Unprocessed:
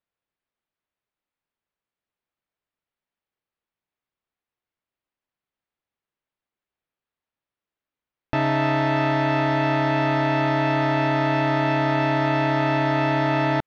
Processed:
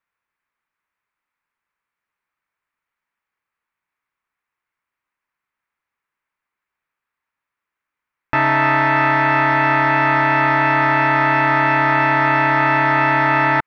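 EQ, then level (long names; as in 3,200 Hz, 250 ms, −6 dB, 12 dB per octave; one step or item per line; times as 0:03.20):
flat-topped bell 1,500 Hz +11.5 dB
0.0 dB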